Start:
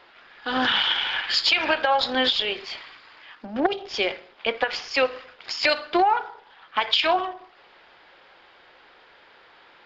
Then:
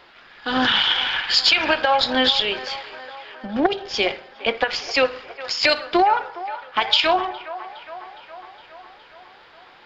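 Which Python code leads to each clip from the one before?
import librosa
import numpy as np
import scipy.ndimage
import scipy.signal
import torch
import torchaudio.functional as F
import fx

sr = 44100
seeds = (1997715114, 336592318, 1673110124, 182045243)

y = fx.bass_treble(x, sr, bass_db=5, treble_db=4)
y = fx.echo_wet_bandpass(y, sr, ms=413, feedback_pct=64, hz=1000.0, wet_db=-13.0)
y = y * librosa.db_to_amplitude(2.5)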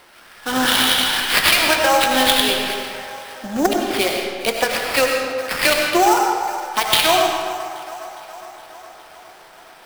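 y = fx.sample_hold(x, sr, seeds[0], rate_hz=6900.0, jitter_pct=20)
y = fx.rev_freeverb(y, sr, rt60_s=1.6, hf_ratio=0.75, predelay_ms=55, drr_db=1.5)
y = y * librosa.db_to_amplitude(1.0)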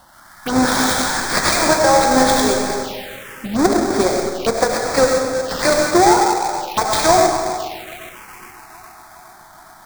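y = fx.halfwave_hold(x, sr)
y = fx.env_phaser(y, sr, low_hz=390.0, high_hz=2900.0, full_db=-17.0)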